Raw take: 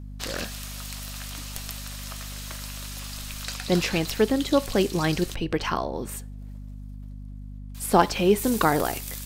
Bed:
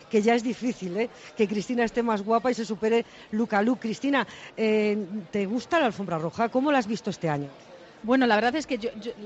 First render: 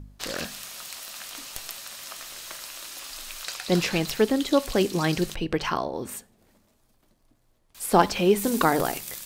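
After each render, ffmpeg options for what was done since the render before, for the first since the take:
-af "bandreject=f=50:t=h:w=4,bandreject=f=100:t=h:w=4,bandreject=f=150:t=h:w=4,bandreject=f=200:t=h:w=4,bandreject=f=250:t=h:w=4"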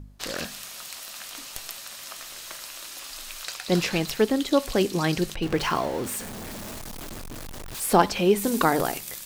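-filter_complex "[0:a]asettb=1/sr,asplit=3[a][b][c];[a]atrim=end=3.474[d];[b]atrim=start=3.47:end=4.55,asetpts=PTS-STARTPTS,afade=t=in:d=0.004:c=qsin,afade=t=out:st=1.076:d=0.004:c=qsin,aeval=exprs='sgn(val(0))*max(abs(val(0))-0.00188,0)':c=same[e];[c]atrim=start=4.546[f];[d][e]acrossfade=d=0.004:c1=hsin:c2=qsin[g];[g][f]acrossfade=d=0.004:c1=qsin:c2=hsin,asettb=1/sr,asplit=3[h][i][j];[h]atrim=end=5.424[k];[i]atrim=start=5.42:end=7.96,asetpts=PTS-STARTPTS,afade=t=in:d=0.004:c=qsin,afade=t=out:st=2.536:d=0.004:c=qsin,aeval=exprs='val(0)+0.5*0.0282*sgn(val(0))':c=same[l];[j]atrim=start=7.956[m];[k][l]acrossfade=d=0.004:c1=hsin:c2=qsin[n];[n][m]acrossfade=d=0.004:c1=qsin:c2=hsin"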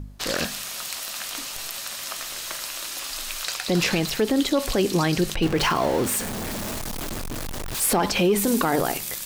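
-af "acontrast=74,alimiter=limit=-12.5dB:level=0:latency=1:release=37"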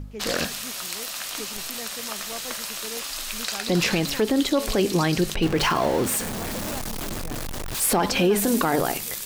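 -filter_complex "[1:a]volume=-15.5dB[a];[0:a][a]amix=inputs=2:normalize=0"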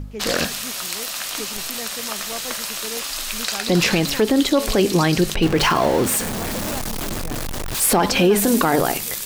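-af "volume=4.5dB"

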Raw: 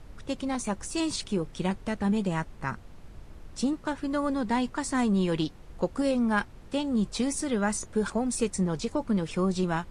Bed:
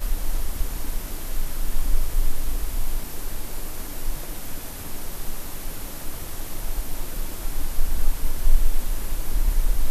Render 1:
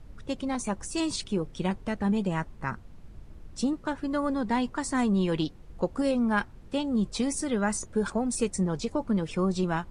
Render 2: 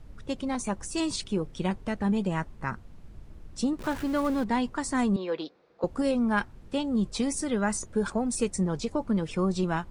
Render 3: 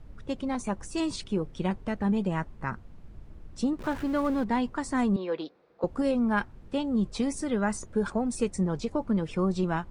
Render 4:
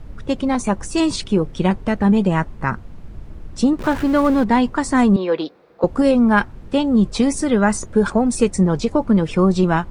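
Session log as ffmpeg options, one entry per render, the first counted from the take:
-af "afftdn=nr=6:nf=-48"
-filter_complex "[0:a]asettb=1/sr,asplit=3[a][b][c];[a]atrim=end=3.794[d];[b]atrim=start=3.79:end=4.44,asetpts=PTS-STARTPTS,afade=t=in:d=0.004:c=qsin,afade=t=out:st=0.646:d=0.004:c=qsin,aeval=exprs='val(0)+0.5*0.0168*sgn(val(0))':c=same[e];[c]atrim=start=4.436[f];[d][e]acrossfade=d=0.004:c1=hsin:c2=qsin[g];[g][f]acrossfade=d=0.004:c1=qsin:c2=hsin,asettb=1/sr,asplit=3[h][i][j];[h]atrim=end=5.164[k];[i]atrim=start=5.16:end=5.84,asetpts=PTS-STARTPTS,afade=t=in:d=0.004:c=qsin,afade=t=out:st=0.676:d=0.004:c=qsin,highpass=470,equalizer=f=490:t=q:w=4:g=5,equalizer=f=910:t=q:w=4:g=-4,equalizer=f=1.9k:t=q:w=4:g=-3,equalizer=f=3k:t=q:w=4:g=-9,lowpass=f=4.5k:w=0.5412,lowpass=f=4.5k:w=1.3066[l];[j]atrim=start=5.836[m];[k][l]acrossfade=d=0.004:c1=hsin:c2=qsin[n];[n][m]acrossfade=d=0.004:c1=qsin:c2=hsin"
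-af "highshelf=f=3.8k:g=-7.5"
-af "volume=11.5dB"

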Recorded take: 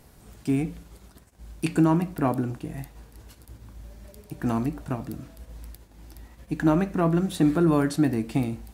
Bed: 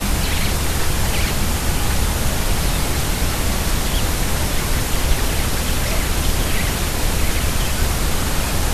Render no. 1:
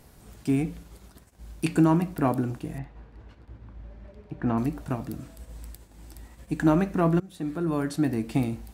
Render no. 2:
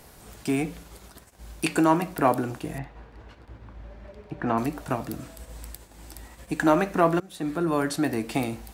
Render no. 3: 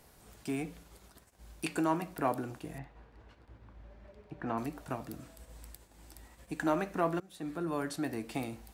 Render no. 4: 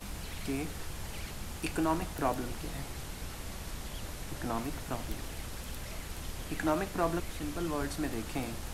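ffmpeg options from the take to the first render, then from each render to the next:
-filter_complex "[0:a]asettb=1/sr,asplit=3[a][b][c];[a]atrim=end=2.784[d];[b]atrim=start=2.78:end=4.58,asetpts=PTS-STARTPTS,afade=t=in:d=0.004:c=qsin,afade=t=out:st=1.796:d=0.004:c=qsin,lowpass=2.3k[e];[c]atrim=start=4.576[f];[d][e]acrossfade=d=0.004:c1=hsin:c2=qsin[g];[g][f]acrossfade=d=0.004:c1=qsin:c2=hsin,asettb=1/sr,asplit=3[h][i][j];[h]atrim=end=5.194[k];[i]atrim=start=5.19:end=6.66,asetpts=PTS-STARTPTS,afade=t=in:d=0.004:c=qsin,afade=t=out:st=1.466:d=0.004:c=qsin,equalizer=f=8.1k:w=4.3:g=7.5[l];[j]atrim=start=6.656[m];[k][l]acrossfade=d=0.004:c1=hsin:c2=qsin[n];[n][m]acrossfade=d=0.004:c1=qsin:c2=hsin,asplit=2[o][p];[o]atrim=end=7.2,asetpts=PTS-STARTPTS,afade=t=out:st=7.196:d=0.004:c=hsin:silence=0.0944061[q];[p]atrim=start=7.2,asetpts=PTS-STARTPTS,afade=t=in:d=1.19:silence=0.0944061[r];[q][r]concat=n=2:v=0:a=1"
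-filter_complex "[0:a]acrossover=split=390[a][b];[a]alimiter=limit=-24dB:level=0:latency=1:release=357[c];[b]acontrast=74[d];[c][d]amix=inputs=2:normalize=0"
-af "volume=-10dB"
-filter_complex "[1:a]volume=-22dB[a];[0:a][a]amix=inputs=2:normalize=0"

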